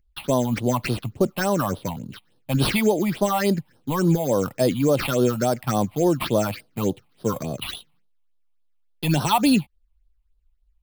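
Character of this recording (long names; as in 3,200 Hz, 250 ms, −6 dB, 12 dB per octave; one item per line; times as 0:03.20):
aliases and images of a low sample rate 6,900 Hz, jitter 0%
phaser sweep stages 6, 3.5 Hz, lowest notch 400–2,200 Hz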